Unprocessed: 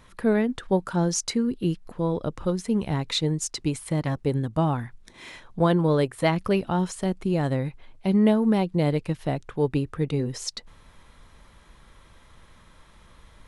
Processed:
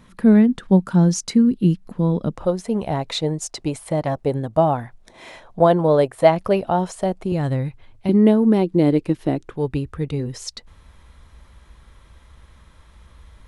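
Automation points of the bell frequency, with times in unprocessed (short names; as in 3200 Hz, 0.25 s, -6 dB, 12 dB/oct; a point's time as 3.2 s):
bell +12.5 dB 0.95 oct
200 Hz
from 2.35 s 660 Hz
from 7.32 s 90 Hz
from 8.09 s 320 Hz
from 9.57 s 63 Hz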